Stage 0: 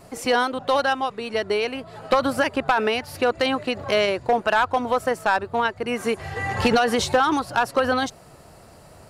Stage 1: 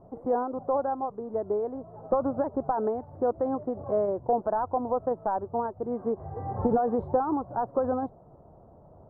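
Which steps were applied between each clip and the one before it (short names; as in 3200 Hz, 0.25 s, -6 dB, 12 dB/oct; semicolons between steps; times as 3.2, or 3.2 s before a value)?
inverse Chebyshev low-pass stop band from 2400 Hz, stop band 50 dB; gain -4.5 dB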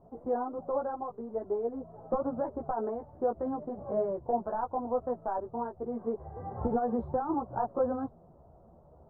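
chorus voices 6, 1.1 Hz, delay 15 ms, depth 3 ms; gain -1.5 dB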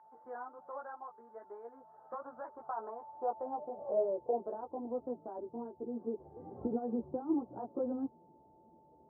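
whine 880 Hz -49 dBFS; band-pass sweep 1600 Hz -> 310 Hz, 2.28–4.91; gain +1 dB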